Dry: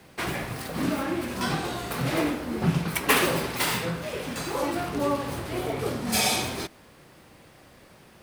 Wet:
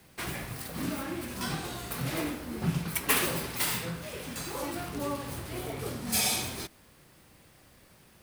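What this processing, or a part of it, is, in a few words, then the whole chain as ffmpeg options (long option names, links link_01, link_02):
smiley-face EQ: -af "lowshelf=frequency=95:gain=5,equalizer=frequency=570:width_type=o:width=2.3:gain=-3,highshelf=frequency=7600:gain=9,volume=-6dB"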